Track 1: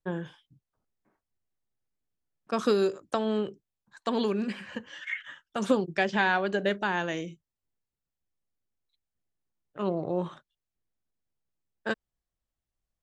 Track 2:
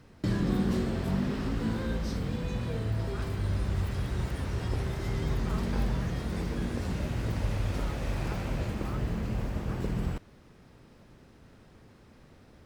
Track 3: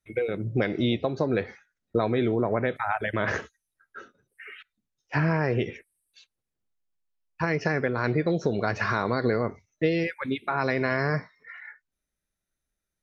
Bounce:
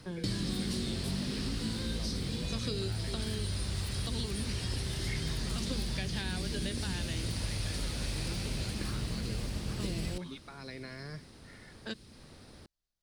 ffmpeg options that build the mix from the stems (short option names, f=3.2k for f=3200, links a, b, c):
-filter_complex "[0:a]volume=-5.5dB[a];[1:a]equalizer=f=9.4k:w=3.4:g=14.5,volume=1.5dB[b];[2:a]volume=-16dB[c];[a][b][c]amix=inputs=3:normalize=0,equalizer=f=4.5k:t=o:w=0.89:g=11,acrossover=split=380|2200[d][e][f];[d]acompressor=threshold=-33dB:ratio=4[g];[e]acompressor=threshold=-51dB:ratio=4[h];[f]acompressor=threshold=-38dB:ratio=4[i];[g][h][i]amix=inputs=3:normalize=0"